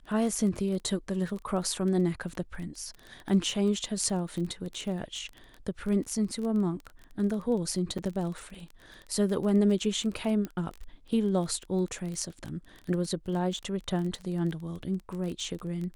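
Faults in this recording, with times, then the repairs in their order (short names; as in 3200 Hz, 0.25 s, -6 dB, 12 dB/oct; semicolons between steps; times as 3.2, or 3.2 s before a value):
crackle 22/s -34 dBFS
7.98–7.99 gap 6.1 ms
10.45 pop -22 dBFS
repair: de-click; interpolate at 7.98, 6.1 ms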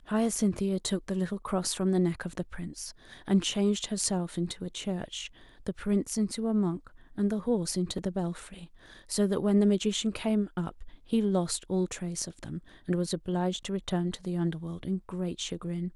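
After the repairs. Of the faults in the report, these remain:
none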